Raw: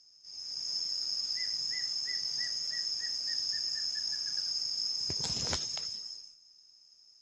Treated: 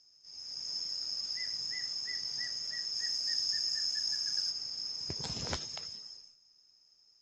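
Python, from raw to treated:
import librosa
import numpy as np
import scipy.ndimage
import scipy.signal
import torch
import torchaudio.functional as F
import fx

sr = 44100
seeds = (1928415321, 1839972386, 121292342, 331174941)

y = fx.high_shelf(x, sr, hz=5900.0, db=fx.steps((0.0, -7.0), (2.94, 2.0), (4.5, -12.0)))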